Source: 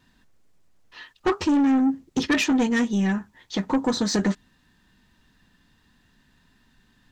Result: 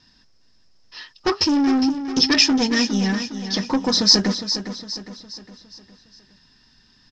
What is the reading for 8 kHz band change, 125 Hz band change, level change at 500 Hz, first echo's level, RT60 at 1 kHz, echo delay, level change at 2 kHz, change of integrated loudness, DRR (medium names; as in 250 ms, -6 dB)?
+9.0 dB, +1.5 dB, +1.5 dB, -10.0 dB, no reverb, 409 ms, +3.0 dB, +4.5 dB, no reverb